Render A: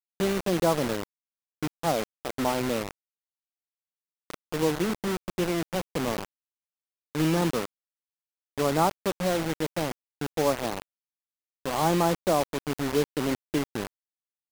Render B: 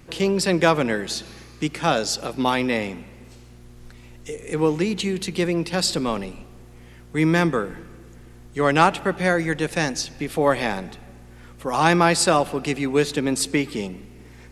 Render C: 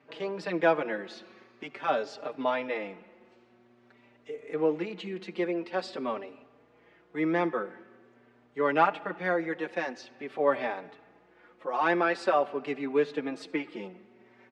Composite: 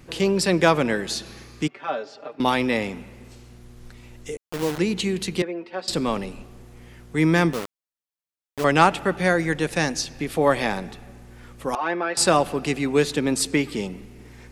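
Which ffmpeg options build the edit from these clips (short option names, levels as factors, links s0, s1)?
-filter_complex "[2:a]asplit=3[s0][s1][s2];[0:a]asplit=2[s3][s4];[1:a]asplit=6[s5][s6][s7][s8][s9][s10];[s5]atrim=end=1.682[s11];[s0]atrim=start=1.678:end=2.402[s12];[s6]atrim=start=2.398:end=4.372[s13];[s3]atrim=start=4.368:end=4.782[s14];[s7]atrim=start=4.778:end=5.422[s15];[s1]atrim=start=5.418:end=5.882[s16];[s8]atrim=start=5.878:end=7.532[s17];[s4]atrim=start=7.528:end=8.642[s18];[s9]atrim=start=8.638:end=11.752[s19];[s2]atrim=start=11.748:end=12.172[s20];[s10]atrim=start=12.168[s21];[s11][s12]acrossfade=d=0.004:c1=hsin:c2=hsin[s22];[s22][s13]acrossfade=d=0.004:c1=hsin:c2=hsin[s23];[s23][s14]acrossfade=d=0.004:c1=hsin:c2=hsin[s24];[s24][s15]acrossfade=d=0.004:c1=hsin:c2=hsin[s25];[s25][s16]acrossfade=d=0.004:c1=hsin:c2=hsin[s26];[s26][s17]acrossfade=d=0.004:c1=hsin:c2=hsin[s27];[s27][s18]acrossfade=d=0.004:c1=hsin:c2=hsin[s28];[s28][s19]acrossfade=d=0.004:c1=hsin:c2=hsin[s29];[s29][s20]acrossfade=d=0.004:c1=hsin:c2=hsin[s30];[s30][s21]acrossfade=d=0.004:c1=hsin:c2=hsin"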